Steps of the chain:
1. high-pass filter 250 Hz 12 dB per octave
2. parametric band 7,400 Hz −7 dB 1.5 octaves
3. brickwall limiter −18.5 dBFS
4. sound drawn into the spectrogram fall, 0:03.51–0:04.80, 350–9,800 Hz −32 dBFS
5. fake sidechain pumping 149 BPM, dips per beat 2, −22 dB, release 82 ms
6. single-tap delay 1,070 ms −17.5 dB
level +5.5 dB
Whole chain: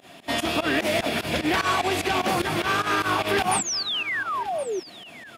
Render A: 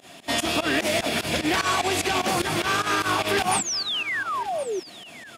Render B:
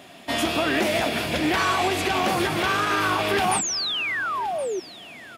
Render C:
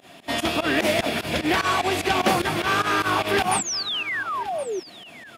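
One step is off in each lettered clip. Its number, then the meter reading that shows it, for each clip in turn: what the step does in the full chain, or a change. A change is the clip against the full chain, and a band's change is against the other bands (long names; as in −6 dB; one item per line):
2, 8 kHz band +2.5 dB
5, change in integrated loudness +1.0 LU
3, change in crest factor +2.0 dB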